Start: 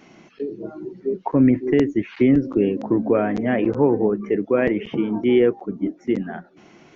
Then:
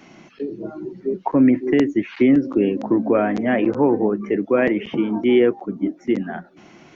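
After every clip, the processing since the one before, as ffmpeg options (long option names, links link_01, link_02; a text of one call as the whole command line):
ffmpeg -i in.wav -filter_complex "[0:a]equalizer=frequency=440:width=4.2:gain=-4.5,acrossover=split=180[link_01][link_02];[link_01]acompressor=threshold=-42dB:ratio=4[link_03];[link_03][link_02]amix=inputs=2:normalize=0,volume=3dB" out.wav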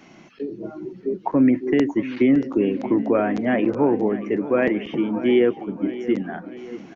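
ffmpeg -i in.wav -af "aecho=1:1:632|1264|1896|2528|3160:0.178|0.0889|0.0445|0.0222|0.0111,volume=-2dB" out.wav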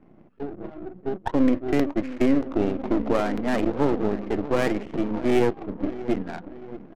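ffmpeg -i in.wav -af "aeval=exprs='if(lt(val(0),0),0.251*val(0),val(0))':channel_layout=same,adynamicsmooth=sensitivity=5:basefreq=560" out.wav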